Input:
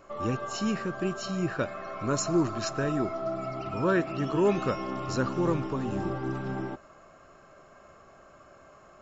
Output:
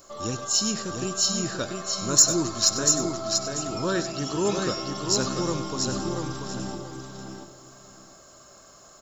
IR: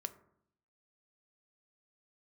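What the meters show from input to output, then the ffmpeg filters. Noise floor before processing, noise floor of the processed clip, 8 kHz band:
-55 dBFS, -51 dBFS, no reading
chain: -filter_complex "[0:a]asplit=2[s0][s1];[s1]aecho=0:1:689|1378|2067:0.562|0.124|0.0272[s2];[s0][s2]amix=inputs=2:normalize=0,aexciter=amount=5:drive=8.7:freq=3600,asplit=2[s3][s4];[s4]aecho=0:1:97:0.224[s5];[s3][s5]amix=inputs=2:normalize=0,volume=0.841"

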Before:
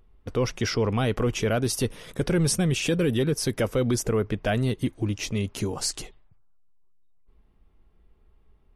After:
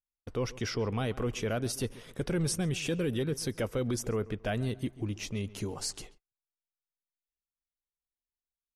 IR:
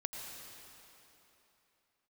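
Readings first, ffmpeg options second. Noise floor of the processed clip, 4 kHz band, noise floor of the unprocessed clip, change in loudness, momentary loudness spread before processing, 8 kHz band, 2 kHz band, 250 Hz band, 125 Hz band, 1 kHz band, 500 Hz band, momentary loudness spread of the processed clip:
under -85 dBFS, -7.5 dB, -60 dBFS, -7.5 dB, 6 LU, -7.5 dB, -7.5 dB, -7.5 dB, -7.5 dB, -7.5 dB, -7.5 dB, 6 LU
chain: -filter_complex "[0:a]asplit=2[s0][s1];[s1]adelay=136,lowpass=f=2800:p=1,volume=0.119,asplit=2[s2][s3];[s3]adelay=136,lowpass=f=2800:p=1,volume=0.35,asplit=2[s4][s5];[s5]adelay=136,lowpass=f=2800:p=1,volume=0.35[s6];[s0][s2][s4][s6]amix=inputs=4:normalize=0,agate=range=0.0126:threshold=0.00562:ratio=16:detection=peak,volume=0.422"

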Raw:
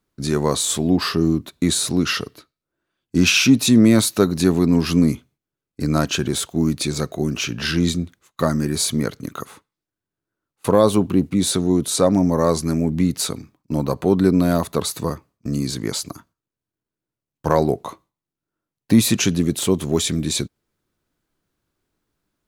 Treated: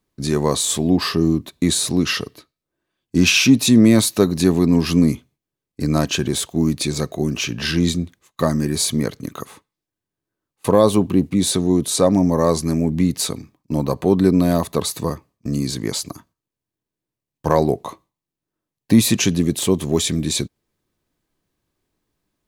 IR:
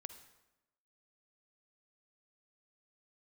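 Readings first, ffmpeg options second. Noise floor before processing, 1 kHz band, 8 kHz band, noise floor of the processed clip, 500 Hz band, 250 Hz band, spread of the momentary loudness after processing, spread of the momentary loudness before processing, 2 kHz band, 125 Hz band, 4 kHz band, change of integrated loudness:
under -85 dBFS, +0.5 dB, +1.0 dB, under -85 dBFS, +1.0 dB, +1.0 dB, 12 LU, 12 LU, +0.5 dB, +1.0 dB, +1.0 dB, +1.0 dB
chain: -af "bandreject=f=1400:w=6.5,volume=1.12"

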